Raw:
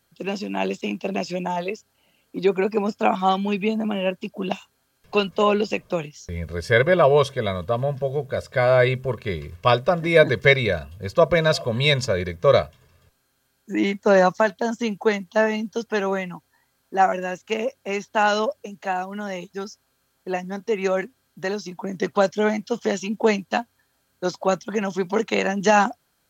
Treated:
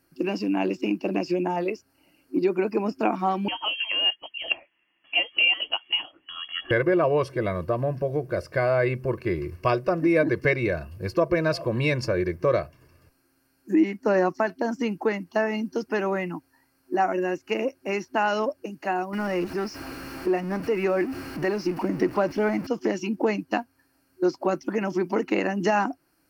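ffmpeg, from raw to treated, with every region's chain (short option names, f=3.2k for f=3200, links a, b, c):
-filter_complex "[0:a]asettb=1/sr,asplit=3[a][b][c];[a]atrim=end=3.484[d];[b]atrim=start=3.48:end=6.71,asetpts=PTS-STARTPTS,afade=t=in:d=0.004:c=qsin,afade=t=out:st=3.226:d=0.004:c=qsin,equalizer=f=610:t=o:w=0.38:g=11,lowpass=f=2.9k:t=q:w=0.5098,lowpass=f=2.9k:t=q:w=0.6013,lowpass=f=2.9k:t=q:w=0.9,lowpass=f=2.9k:t=q:w=2.563,afreqshift=-3400[e];[c]atrim=start=6.706[f];[d][e]acrossfade=d=0.004:c1=hsin:c2=qsin[g];[g][f]acrossfade=d=0.004:c1=qsin:c2=hsin,asettb=1/sr,asplit=3[h][i][j];[h]atrim=end=19.134[k];[i]atrim=start=19.13:end=22.67,asetpts=PTS-STARTPTS,afade=t=in:d=0.004:c=qsin,afade=t=out:st=3.536:d=0.004:c=qsin,aeval=exprs='val(0)+0.5*0.0316*sgn(val(0))':c=same,acrossover=split=5100[l][m];[m]acompressor=threshold=-48dB:ratio=4:attack=1:release=60[n];[l][n]amix=inputs=2:normalize=0[o];[j]atrim=start=22.666[p];[k][o]acrossfade=d=0.004:c1=hsin:c2=qsin[q];[q][p]acrossfade=d=0.004:c1=qsin:c2=hsin,superequalizer=6b=3.98:13b=0.251:15b=0.447,acompressor=threshold=-23dB:ratio=2,adynamicequalizer=threshold=0.00631:dfrequency=3100:dqfactor=0.7:tfrequency=3100:tqfactor=0.7:attack=5:release=100:ratio=0.375:range=1.5:mode=cutabove:tftype=highshelf"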